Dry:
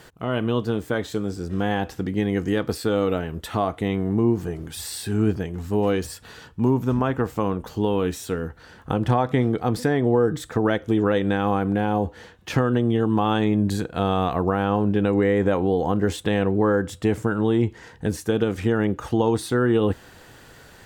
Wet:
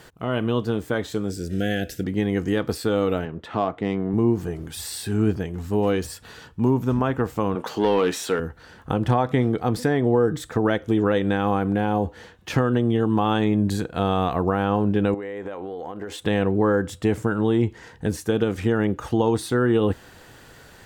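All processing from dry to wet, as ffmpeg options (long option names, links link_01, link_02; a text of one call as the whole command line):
ffmpeg -i in.wav -filter_complex "[0:a]asettb=1/sr,asplit=3[link_01][link_02][link_03];[link_01]atrim=end=1.304[link_04];[link_02]atrim=start=1.3:end=2.04,asetpts=PTS-STARTPTS,afade=type=in:duration=0.004:curve=qsin,afade=type=out:start_time=0.736:duration=0.004:curve=qsin,asuperstop=centerf=990:order=8:qfactor=1.3,highshelf=frequency=5600:gain=10.5[link_05];[link_03]atrim=start=2.036[link_06];[link_04][link_05]acrossfade=duration=0.004:curve1=hsin:curve2=qsin[link_07];[link_07][link_06]acrossfade=duration=0.004:curve1=qsin:curve2=hsin,asettb=1/sr,asplit=3[link_08][link_09][link_10];[link_08]atrim=end=3.254[link_11];[link_09]atrim=start=3.25:end=4.14,asetpts=PTS-STARTPTS,afade=type=in:duration=0.004:curve=qsin,afade=type=out:start_time=0.886:duration=0.004:curve=qsin,highpass=130,adynamicsmooth=sensitivity=1.5:basefreq=2600[link_12];[link_10]atrim=start=4.136[link_13];[link_11][link_12]acrossfade=duration=0.004:curve1=hsin:curve2=qsin[link_14];[link_14][link_13]acrossfade=duration=0.004:curve1=qsin:curve2=hsin,asettb=1/sr,asplit=3[link_15][link_16][link_17];[link_15]atrim=end=7.554[link_18];[link_16]atrim=start=7.55:end=8.4,asetpts=PTS-STARTPTS,afade=type=in:duration=0.004:curve=qsin,afade=type=out:start_time=0.846:duration=0.004:curve=qsin,highpass=140,asplit=2[link_19][link_20];[link_20]highpass=frequency=720:poles=1,volume=16dB,asoftclip=type=tanh:threshold=-9.5dB[link_21];[link_19][link_21]amix=inputs=2:normalize=0,lowpass=frequency=3700:poles=1,volume=-6dB[link_22];[link_17]atrim=start=8.396[link_23];[link_18][link_22]acrossfade=duration=0.004:curve1=hsin:curve2=qsin[link_24];[link_24][link_23]acrossfade=duration=0.004:curve1=qsin:curve2=hsin,asettb=1/sr,asplit=3[link_25][link_26][link_27];[link_25]atrim=end=15.144[link_28];[link_26]atrim=start=15.14:end=16.22,asetpts=PTS-STARTPTS,afade=type=in:duration=0.004:curve=qsin,afade=type=out:start_time=1.076:duration=0.004:curve=qsin,bass=frequency=250:gain=-13,treble=frequency=4000:gain=-4,acompressor=threshold=-28dB:ratio=10:attack=3.2:release=140:knee=1:detection=peak[link_29];[link_27]atrim=start=16.216[link_30];[link_28][link_29]acrossfade=duration=0.004:curve1=hsin:curve2=qsin[link_31];[link_31][link_30]acrossfade=duration=0.004:curve1=qsin:curve2=hsin" out.wav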